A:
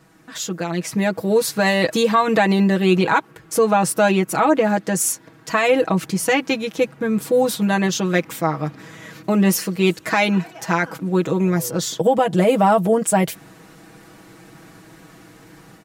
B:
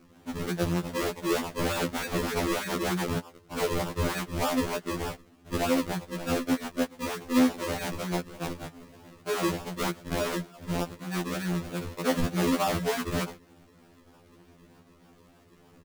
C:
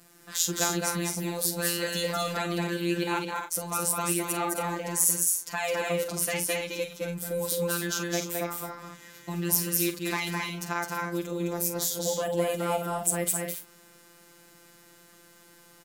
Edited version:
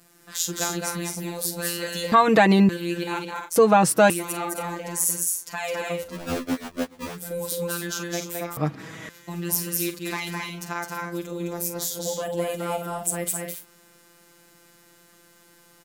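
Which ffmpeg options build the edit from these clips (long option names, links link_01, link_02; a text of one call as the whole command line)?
ffmpeg -i take0.wav -i take1.wav -i take2.wav -filter_complex "[0:a]asplit=3[link_01][link_02][link_03];[2:a]asplit=5[link_04][link_05][link_06][link_07][link_08];[link_04]atrim=end=2.122[link_09];[link_01]atrim=start=2.118:end=2.692[link_10];[link_05]atrim=start=2.688:end=3.562[link_11];[link_02]atrim=start=3.558:end=4.102[link_12];[link_06]atrim=start=4.098:end=6.17[link_13];[1:a]atrim=start=5.93:end=7.27[link_14];[link_07]atrim=start=7.03:end=8.572[link_15];[link_03]atrim=start=8.568:end=9.092[link_16];[link_08]atrim=start=9.088[link_17];[link_09][link_10]acrossfade=duration=0.004:curve1=hsin:curve2=hsin[link_18];[link_18][link_11]acrossfade=duration=0.004:curve1=hsin:curve2=hsin[link_19];[link_19][link_12]acrossfade=duration=0.004:curve1=hsin:curve2=hsin[link_20];[link_20][link_13]acrossfade=duration=0.004:curve1=hsin:curve2=hsin[link_21];[link_21][link_14]acrossfade=duration=0.24:curve1=tri:curve2=tri[link_22];[link_22][link_15]acrossfade=duration=0.24:curve1=tri:curve2=tri[link_23];[link_23][link_16]acrossfade=duration=0.004:curve1=hsin:curve2=hsin[link_24];[link_24][link_17]acrossfade=duration=0.004:curve1=hsin:curve2=hsin" out.wav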